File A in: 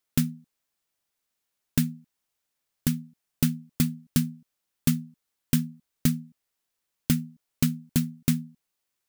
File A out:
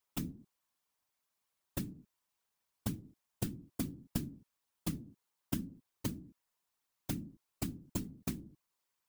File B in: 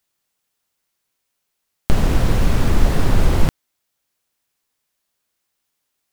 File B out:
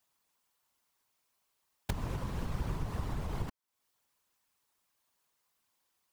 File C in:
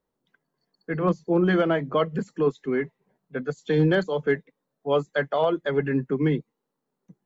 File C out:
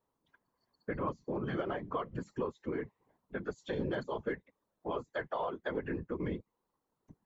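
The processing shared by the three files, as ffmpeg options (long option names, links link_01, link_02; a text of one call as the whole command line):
ffmpeg -i in.wav -af "equalizer=frequency=1000:width_type=o:width=0.47:gain=8,acompressor=threshold=-31dB:ratio=4,afftfilt=real='hypot(re,im)*cos(2*PI*random(0))':imag='hypot(re,im)*sin(2*PI*random(1))':win_size=512:overlap=0.75,volume=2dB" out.wav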